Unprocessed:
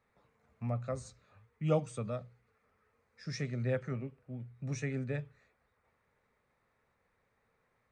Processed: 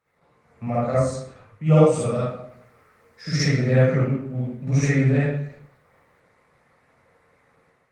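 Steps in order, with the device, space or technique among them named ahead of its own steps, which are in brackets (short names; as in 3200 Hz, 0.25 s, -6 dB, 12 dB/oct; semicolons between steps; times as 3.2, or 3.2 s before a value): 1.86–3.65 high shelf 3100 Hz +5 dB; far-field microphone of a smart speaker (reverb RT60 0.70 s, pre-delay 45 ms, DRR -9 dB; HPF 92 Hz 12 dB/oct; AGC gain up to 8 dB; Opus 20 kbps 48000 Hz)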